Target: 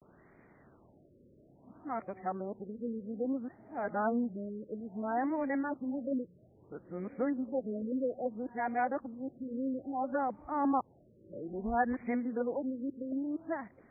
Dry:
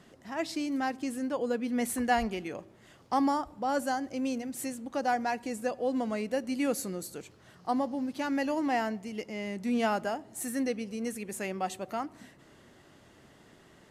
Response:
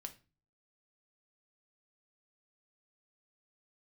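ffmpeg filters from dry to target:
-af "areverse,afftfilt=real='re*lt(b*sr/1024,580*pow(2500/580,0.5+0.5*sin(2*PI*0.6*pts/sr)))':imag='im*lt(b*sr/1024,580*pow(2500/580,0.5+0.5*sin(2*PI*0.6*pts/sr)))':win_size=1024:overlap=0.75,volume=-3dB"

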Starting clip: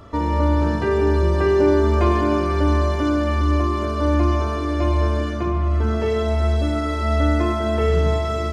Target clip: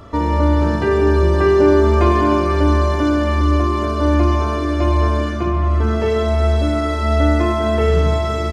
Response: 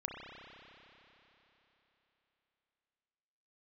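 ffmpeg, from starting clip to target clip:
-filter_complex "[0:a]asplit=2[a][b];[b]adelay=230,highpass=300,lowpass=3.4k,asoftclip=type=hard:threshold=-14dB,volume=-14dB[c];[a][c]amix=inputs=2:normalize=0,asplit=2[d][e];[1:a]atrim=start_sample=2205[f];[e][f]afir=irnorm=-1:irlink=0,volume=-11.5dB[g];[d][g]amix=inputs=2:normalize=0,volume=2dB"

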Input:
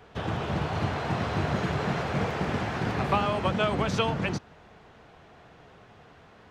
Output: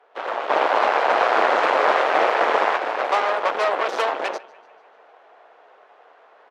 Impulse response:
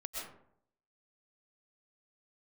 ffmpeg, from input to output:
-filter_complex "[0:a]aecho=1:1:147|294|441|588|735:0.119|0.0677|0.0386|0.022|0.0125,aeval=exprs='0.266*(cos(1*acos(clip(val(0)/0.266,-1,1)))-cos(1*PI/2))+0.0841*(cos(8*acos(clip(val(0)/0.266,-1,1)))-cos(8*PI/2))':c=same,highpass=f=510:w=0.5412,highpass=f=510:w=1.3066,highshelf=f=2k:g=-11,asplit=3[a][b][c];[a]afade=t=out:st=0.49:d=0.02[d];[b]acontrast=68,afade=t=in:st=0.49:d=0.02,afade=t=out:st=2.76:d=0.02[e];[c]afade=t=in:st=2.76:d=0.02[f];[d][e][f]amix=inputs=3:normalize=0,aemphasis=mode=reproduction:type=cd,dynaudnorm=f=110:g=3:m=6.5dB"

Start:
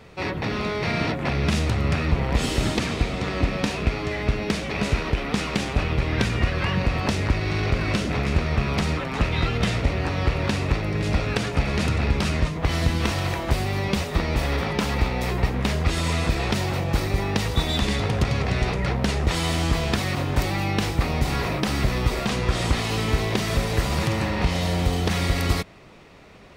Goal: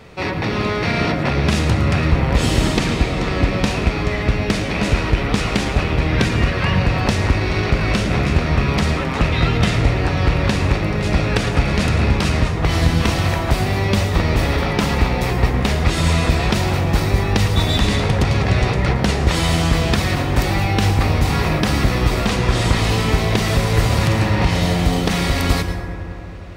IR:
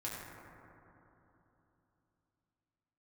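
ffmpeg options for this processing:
-filter_complex "[0:a]asplit=2[a][b];[1:a]atrim=start_sample=2205,adelay=110[c];[b][c]afir=irnorm=-1:irlink=0,volume=-8.5dB[d];[a][d]amix=inputs=2:normalize=0,volume=5dB"

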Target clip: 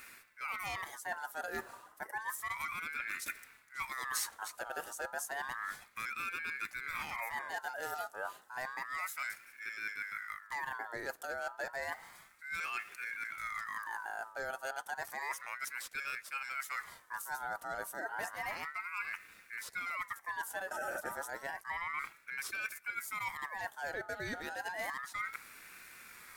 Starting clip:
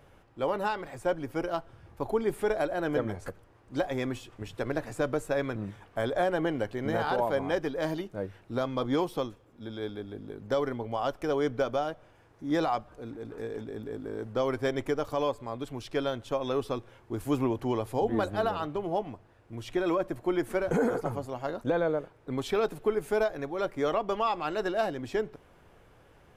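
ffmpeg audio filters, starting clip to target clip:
-af "highpass=f=170:p=1,equalizer=f=1.2k:t=o:w=0.84:g=-12.5,areverse,acompressor=threshold=-45dB:ratio=8,areverse,aexciter=amount=4.3:drive=6.2:freq=6.1k,aeval=exprs='val(0)*sin(2*PI*1500*n/s+1500*0.3/0.31*sin(2*PI*0.31*n/s))':c=same,volume=10dB"

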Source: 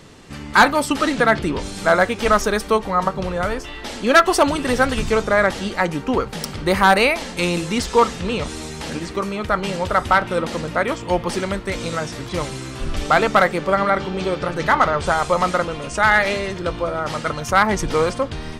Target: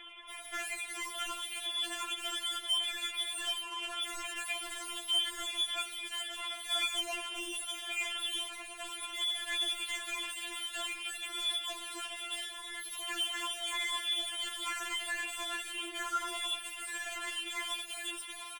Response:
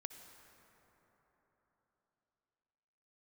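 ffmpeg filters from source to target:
-filter_complex "[0:a]asoftclip=type=hard:threshold=-22.5dB,asplit=2[a][b];[b]aecho=0:1:82:0.211[c];[a][c]amix=inputs=2:normalize=0,lowpass=f=2.3k:t=q:w=0.5098,lowpass=f=2.3k:t=q:w=0.6013,lowpass=f=2.3k:t=q:w=0.9,lowpass=f=2.3k:t=q:w=2.563,afreqshift=-2700,aphaser=in_gain=1:out_gain=1:delay=4.9:decay=0.25:speed=0.35:type=triangular,asoftclip=type=tanh:threshold=-32.5dB,equalizer=f=450:w=7:g=5.5,asetrate=60591,aresample=44100,atempo=0.727827,aecho=1:1:2.8:0.49,afftfilt=real='re*4*eq(mod(b,16),0)':imag='im*4*eq(mod(b,16),0)':win_size=2048:overlap=0.75"

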